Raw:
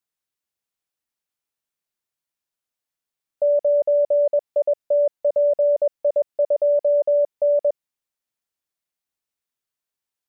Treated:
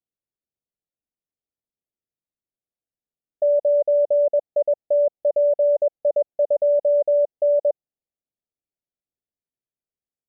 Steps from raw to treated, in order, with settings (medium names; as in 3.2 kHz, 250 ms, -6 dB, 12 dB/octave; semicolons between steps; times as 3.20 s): steep low-pass 810 Hz 72 dB/octave; level-controlled noise filter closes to 570 Hz, open at -15 dBFS